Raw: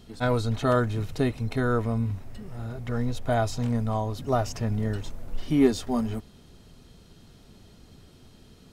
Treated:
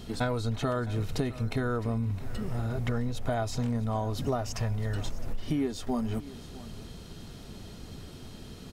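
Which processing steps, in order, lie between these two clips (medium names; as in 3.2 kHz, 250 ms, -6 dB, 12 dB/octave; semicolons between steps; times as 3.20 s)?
4.53–4.96 s: peaking EQ 270 Hz -13 dB 1.3 oct; compression 10:1, threshold -34 dBFS, peak gain reduction 19.5 dB; on a send: delay 661 ms -17.5 dB; on the sum: trim +7.5 dB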